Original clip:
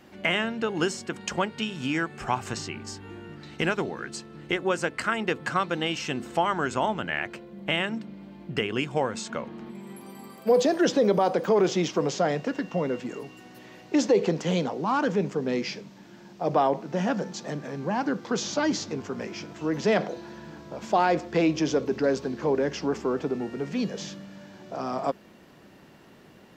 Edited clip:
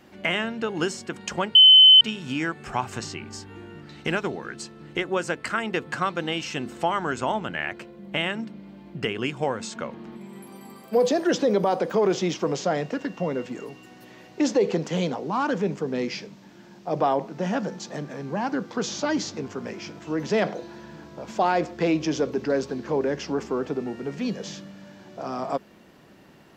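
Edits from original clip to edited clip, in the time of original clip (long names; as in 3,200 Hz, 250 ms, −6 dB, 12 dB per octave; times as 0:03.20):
0:01.55: insert tone 3,050 Hz −8 dBFS 0.46 s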